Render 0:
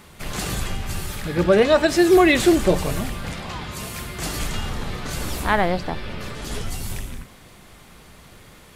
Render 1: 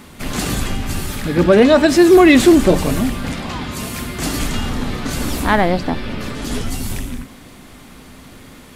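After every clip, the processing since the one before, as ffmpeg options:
-filter_complex "[0:a]equalizer=f=260:w=3.5:g=11.5,asplit=2[a][b];[b]acontrast=51,volume=2dB[c];[a][c]amix=inputs=2:normalize=0,volume=-6dB"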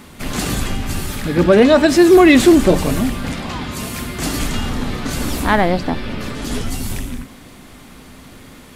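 -af anull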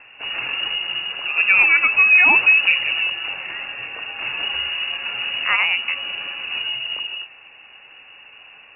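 -af "lowpass=f=2.5k:t=q:w=0.5098,lowpass=f=2.5k:t=q:w=0.6013,lowpass=f=2.5k:t=q:w=0.9,lowpass=f=2.5k:t=q:w=2.563,afreqshift=-2900,volume=-4.5dB"

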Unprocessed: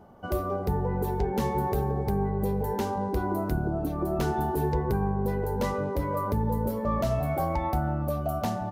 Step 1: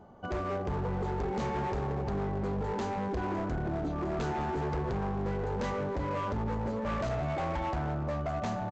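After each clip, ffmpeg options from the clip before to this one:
-af "bandreject=f=5.4k:w=7.9,aresample=16000,volume=28dB,asoftclip=hard,volume=-28dB,aresample=44100,volume=-1.5dB"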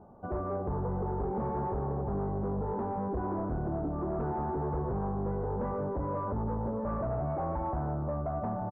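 -af "lowpass=f=1.2k:w=0.5412,lowpass=f=1.2k:w=1.3066"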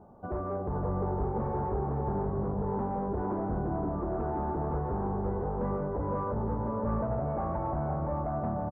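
-af "aecho=1:1:512:0.596"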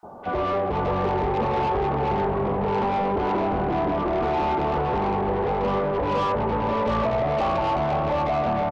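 -filter_complex "[0:a]asplit=2[a][b];[b]highpass=f=720:p=1,volume=17dB,asoftclip=type=tanh:threshold=-23.5dB[c];[a][c]amix=inputs=2:normalize=0,lowpass=f=1.7k:p=1,volume=-6dB,highshelf=f=2k:g=10.5,acrossover=split=1800[d][e];[d]adelay=30[f];[f][e]amix=inputs=2:normalize=0,volume=6.5dB"

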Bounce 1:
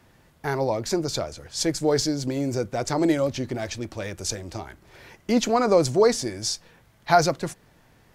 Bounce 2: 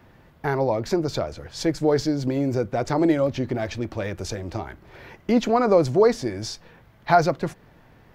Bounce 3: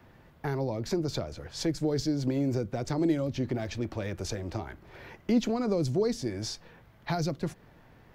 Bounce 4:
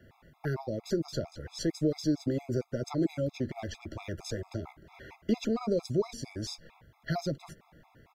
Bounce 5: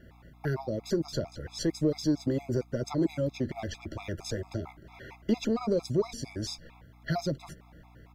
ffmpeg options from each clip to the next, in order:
-filter_complex "[0:a]asplit=2[a][b];[b]acompressor=threshold=-29dB:ratio=6,volume=-2dB[c];[a][c]amix=inputs=2:normalize=0,equalizer=f=8.7k:t=o:w=1.8:g=-14.5"
-filter_complex "[0:a]acrossover=split=350|3000[a][b][c];[b]acompressor=threshold=-32dB:ratio=6[d];[a][d][c]amix=inputs=3:normalize=0,volume=-3.5dB"
-filter_complex "[0:a]asplit=2[a][b];[b]adelay=13,volume=-12.5dB[c];[a][c]amix=inputs=2:normalize=0,afftfilt=real='re*gt(sin(2*PI*4.4*pts/sr)*(1-2*mod(floor(b*sr/1024/680),2)),0)':imag='im*gt(sin(2*PI*4.4*pts/sr)*(1-2*mod(floor(b*sr/1024/680),2)),0)':win_size=1024:overlap=0.75"
-filter_complex "[0:a]aeval=exprs='val(0)+0.00141*(sin(2*PI*60*n/s)+sin(2*PI*2*60*n/s)/2+sin(2*PI*3*60*n/s)/3+sin(2*PI*4*60*n/s)/4+sin(2*PI*5*60*n/s)/5)':c=same,asplit=2[a][b];[b]asoftclip=type=tanh:threshold=-27dB,volume=-10.5dB[c];[a][c]amix=inputs=2:normalize=0"

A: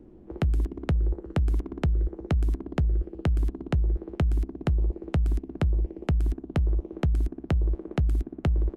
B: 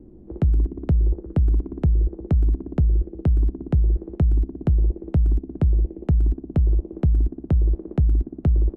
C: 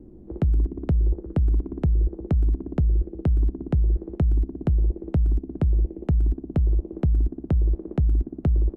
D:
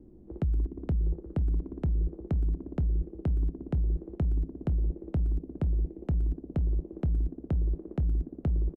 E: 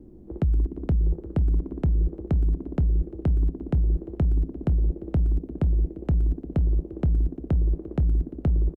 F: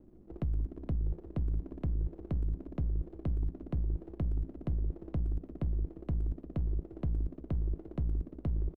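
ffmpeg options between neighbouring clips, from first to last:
-af "tiltshelf=f=830:g=9,volume=-3dB"
-af "alimiter=limit=-14.5dB:level=0:latency=1:release=148"
-filter_complex "[0:a]asplit=4[a][b][c][d];[b]adelay=496,afreqshift=110,volume=-19.5dB[e];[c]adelay=992,afreqshift=220,volume=-28.6dB[f];[d]adelay=1488,afreqshift=330,volume=-37.7dB[g];[a][e][f][g]amix=inputs=4:normalize=0,volume=-7dB"
-af "aecho=1:1:347|694|1041|1388:0.0708|0.0411|0.0238|0.0138,volume=5.5dB"
-af "aeval=exprs='if(lt(val(0),0),0.447*val(0),val(0))':c=same,volume=-8dB"

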